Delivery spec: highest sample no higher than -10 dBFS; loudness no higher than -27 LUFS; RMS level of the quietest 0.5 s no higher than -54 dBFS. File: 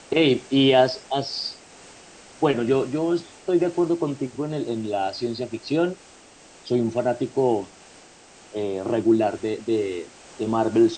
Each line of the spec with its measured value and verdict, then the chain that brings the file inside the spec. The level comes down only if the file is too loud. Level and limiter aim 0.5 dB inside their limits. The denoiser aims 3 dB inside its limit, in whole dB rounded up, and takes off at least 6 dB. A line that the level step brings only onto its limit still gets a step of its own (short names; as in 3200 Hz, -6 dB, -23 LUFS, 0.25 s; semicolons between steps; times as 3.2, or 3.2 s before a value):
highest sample -6.0 dBFS: fail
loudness -23.5 LUFS: fail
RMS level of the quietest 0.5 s -49 dBFS: fail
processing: denoiser 6 dB, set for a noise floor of -49 dBFS; gain -4 dB; limiter -10.5 dBFS